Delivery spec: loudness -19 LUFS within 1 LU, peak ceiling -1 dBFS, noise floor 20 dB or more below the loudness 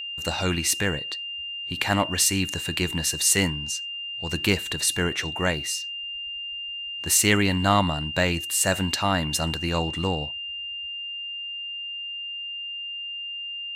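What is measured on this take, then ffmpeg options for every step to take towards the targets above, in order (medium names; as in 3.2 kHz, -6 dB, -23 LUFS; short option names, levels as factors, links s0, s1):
steady tone 2.8 kHz; tone level -31 dBFS; loudness -25.0 LUFS; peak level -3.5 dBFS; loudness target -19.0 LUFS
-> -af "bandreject=f=2800:w=30"
-af "volume=2,alimiter=limit=0.891:level=0:latency=1"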